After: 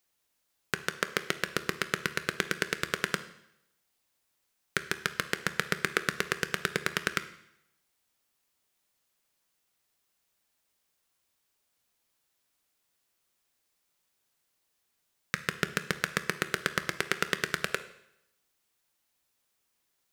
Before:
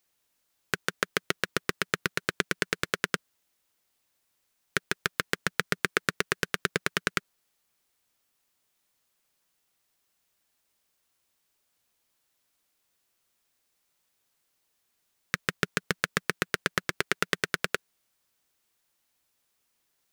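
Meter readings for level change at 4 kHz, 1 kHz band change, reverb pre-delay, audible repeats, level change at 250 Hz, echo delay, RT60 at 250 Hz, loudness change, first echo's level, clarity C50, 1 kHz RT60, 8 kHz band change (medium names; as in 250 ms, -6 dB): -1.5 dB, -1.5 dB, 13 ms, no echo, -1.5 dB, no echo, 0.80 s, -1.5 dB, no echo, 13.5 dB, 0.80 s, -1.5 dB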